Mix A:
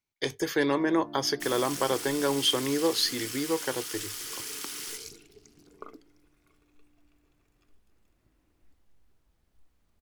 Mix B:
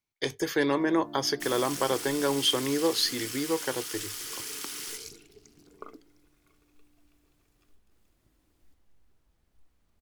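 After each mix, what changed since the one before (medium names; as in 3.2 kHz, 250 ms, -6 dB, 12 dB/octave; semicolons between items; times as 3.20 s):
first sound: remove brick-wall FIR low-pass 2.9 kHz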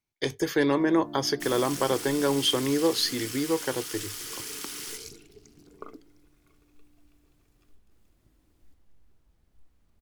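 master: add bass shelf 380 Hz +5 dB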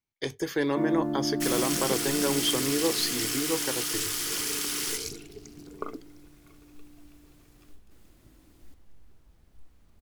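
speech -3.5 dB; first sound +11.5 dB; second sound +7.0 dB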